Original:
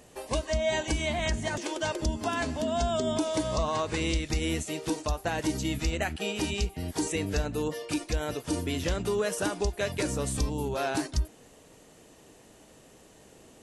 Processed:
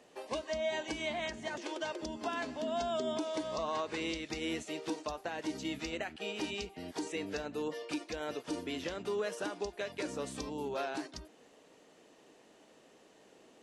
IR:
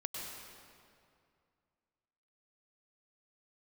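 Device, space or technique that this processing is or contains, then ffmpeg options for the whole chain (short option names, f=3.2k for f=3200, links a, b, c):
DJ mixer with the lows and highs turned down: -filter_complex "[0:a]acrossover=split=200 5900:gain=0.112 1 0.224[a][b][c];[a][b][c]amix=inputs=3:normalize=0,alimiter=limit=-21dB:level=0:latency=1:release=435,volume=-4.5dB"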